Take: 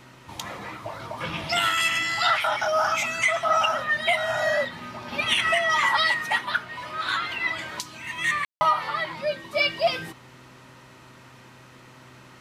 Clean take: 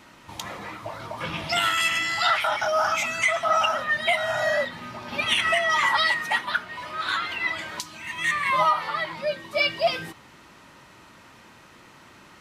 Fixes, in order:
hum removal 127.3 Hz, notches 5
ambience match 0:08.45–0:08.61

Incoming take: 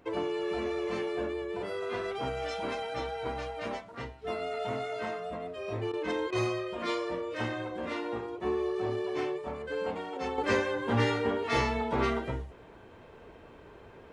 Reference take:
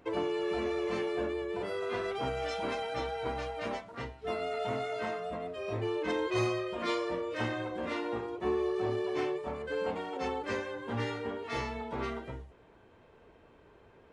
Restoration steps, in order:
repair the gap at 0:05.92/0:06.31, 13 ms
level correction −7.5 dB, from 0:10.38

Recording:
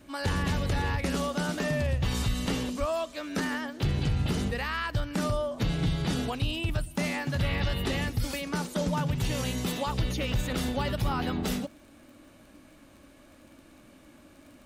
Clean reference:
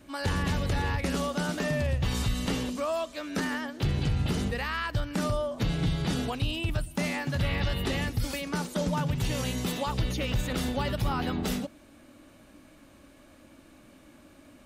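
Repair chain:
click removal
0:02.79–0:02.91: high-pass filter 140 Hz 24 dB per octave

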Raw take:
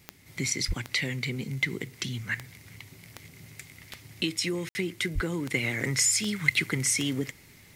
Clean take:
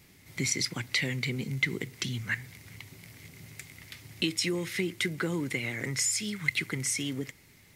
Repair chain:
click removal
0:00.67–0:00.79: high-pass filter 140 Hz 24 dB per octave
0:05.14–0:05.26: high-pass filter 140 Hz 24 dB per octave
ambience match 0:04.69–0:04.75
0:05.54: level correction −4.5 dB

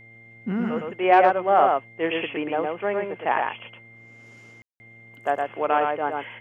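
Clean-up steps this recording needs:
hum removal 114.7 Hz, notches 7
notch filter 2,100 Hz, Q 30
ambience match 0:04.62–0:04.80
echo removal 112 ms −3.5 dB

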